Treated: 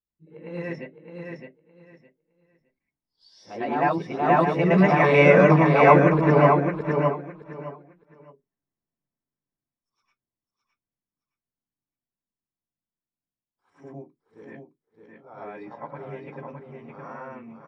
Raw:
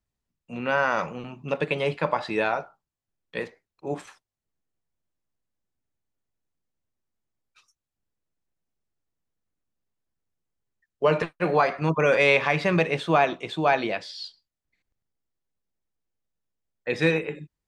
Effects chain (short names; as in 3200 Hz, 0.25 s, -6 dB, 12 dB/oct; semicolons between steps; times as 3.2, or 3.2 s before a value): whole clip reversed; Doppler pass-by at 5.62, 19 m/s, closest 20 m; feedback echo 0.613 s, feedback 20%, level -5 dB; reverb RT60 0.15 s, pre-delay 0.102 s, DRR -6.5 dB; gain -10.5 dB